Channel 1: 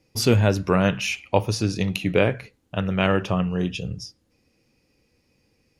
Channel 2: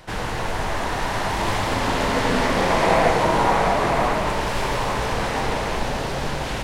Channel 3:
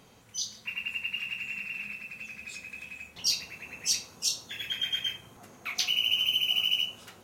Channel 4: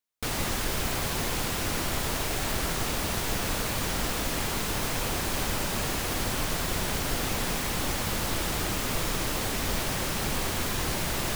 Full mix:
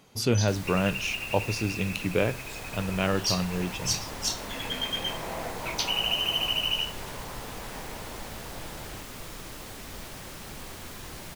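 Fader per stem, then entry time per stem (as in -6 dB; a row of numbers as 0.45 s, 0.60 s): -6.0 dB, -18.5 dB, -1.0 dB, -12.0 dB; 0.00 s, 2.40 s, 0.00 s, 0.25 s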